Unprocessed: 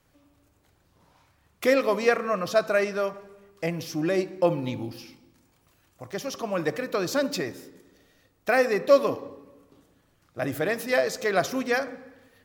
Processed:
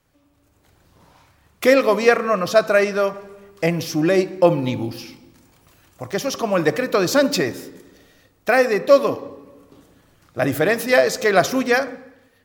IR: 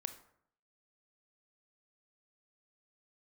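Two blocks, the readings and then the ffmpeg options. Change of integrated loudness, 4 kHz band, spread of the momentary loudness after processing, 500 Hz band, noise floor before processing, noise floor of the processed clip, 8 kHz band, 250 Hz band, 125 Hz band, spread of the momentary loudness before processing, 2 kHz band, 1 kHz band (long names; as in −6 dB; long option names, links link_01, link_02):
+7.5 dB, +8.0 dB, 14 LU, +7.0 dB, −66 dBFS, −60 dBFS, +8.5 dB, +8.0 dB, +8.5 dB, 15 LU, +7.5 dB, +7.0 dB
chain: -af "dynaudnorm=framelen=140:gausssize=9:maxgain=10dB"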